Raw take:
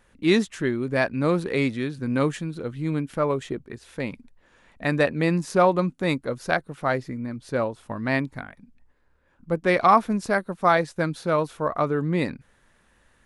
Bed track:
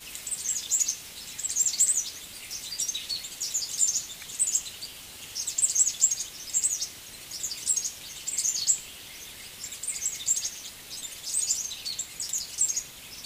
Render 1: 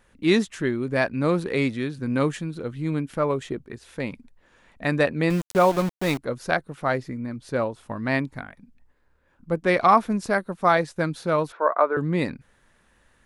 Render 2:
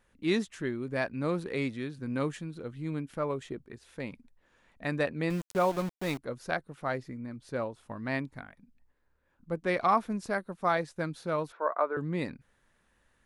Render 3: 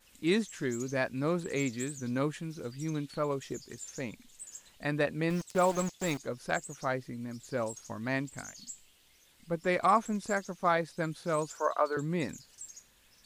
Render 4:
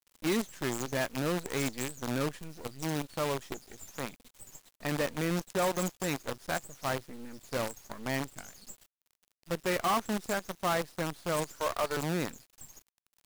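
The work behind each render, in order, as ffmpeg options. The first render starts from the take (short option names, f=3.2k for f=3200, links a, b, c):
-filter_complex "[0:a]asettb=1/sr,asplit=3[a][b][c];[a]atrim=end=5.304[d];[b]atrim=start=5.3:end=6.18,asetpts=PTS-STARTPTS,afade=t=in:d=0.004:c=qsin,afade=t=out:st=0.876:d=0.004:c=qsin,aeval=exprs='val(0)*gte(abs(val(0)),0.0398)':c=same[e];[c]atrim=start=6.176[f];[d][e]acrossfade=d=0.004:c1=hsin:c2=qsin[g];[g][f]acrossfade=d=0.004:c1=qsin:c2=hsin,asettb=1/sr,asplit=3[h][i][j];[h]atrim=end=11.524[k];[i]atrim=start=11.52:end=11.97,asetpts=PTS-STARTPTS,afade=t=in:d=0.004:c=qsin,afade=t=out:st=0.446:d=0.004:c=qsin,highpass=f=350:w=0.5412,highpass=f=350:w=1.3066,equalizer=f=600:t=q:w=4:g=5,equalizer=f=970:t=q:w=4:g=7,equalizer=f=1.5k:t=q:w=4:g=8,equalizer=f=3k:t=q:w=4:g=-10,lowpass=f=3.4k:w=0.5412,lowpass=f=3.4k:w=1.3066[l];[j]atrim=start=11.966[m];[k][l]acrossfade=d=0.004:c1=hsin:c2=qsin[n];[n][m]acrossfade=d=0.004:c1=qsin:c2=hsin"
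-af "volume=-8.5dB"
-filter_complex "[1:a]volume=-21dB[a];[0:a][a]amix=inputs=2:normalize=0"
-af "asoftclip=type=tanh:threshold=-23.5dB,acrusher=bits=6:dc=4:mix=0:aa=0.000001"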